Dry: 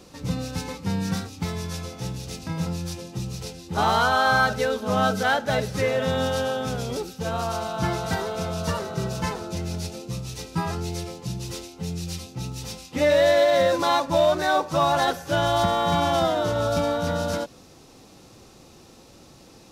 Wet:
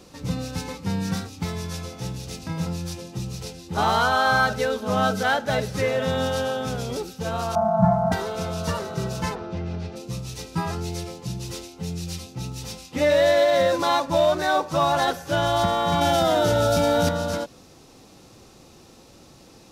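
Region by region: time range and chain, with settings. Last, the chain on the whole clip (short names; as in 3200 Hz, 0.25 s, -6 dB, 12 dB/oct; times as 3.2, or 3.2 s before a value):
7.55–8.12 median filter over 15 samples + EQ curve 100 Hz 0 dB, 210 Hz +14 dB, 290 Hz -27 dB, 440 Hz -17 dB, 670 Hz +12 dB, 1400 Hz -2 dB, 2700 Hz -21 dB, 6300 Hz -13 dB, 10000 Hz -16 dB
9.34–9.95 LPF 2400 Hz + buzz 400 Hz, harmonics 15, -52 dBFS -5 dB/oct
16.01–17.09 Butterworth band-stop 1100 Hz, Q 6.2 + high shelf 6800 Hz +6.5 dB + fast leveller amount 100%
whole clip: dry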